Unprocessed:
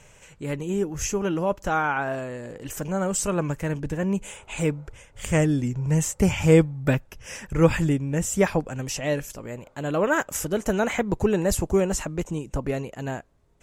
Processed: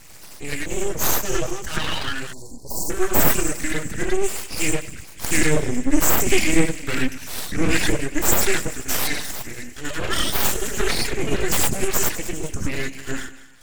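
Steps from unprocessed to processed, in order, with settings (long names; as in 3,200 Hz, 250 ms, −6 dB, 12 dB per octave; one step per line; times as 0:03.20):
in parallel at +2 dB: brickwall limiter −15.5 dBFS, peak gain reduction 11 dB
on the sum: octave-band graphic EQ 125/250/500/1,000/2,000/8,000 Hz +5/+5/−11/−7/+9/+10 dB
reverb whose tail is shaped and stops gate 130 ms rising, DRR −3 dB
reverb reduction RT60 1.4 s
parametric band 580 Hz −14.5 dB 1.2 octaves
on a send: echo with a time of its own for lows and highs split 440 Hz, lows 97 ms, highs 199 ms, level −15 dB
on the sum: full-wave rectification
0:02.33–0:02.90: Chebyshev band-stop filter 1,000–4,300 Hz, order 5
level −4 dB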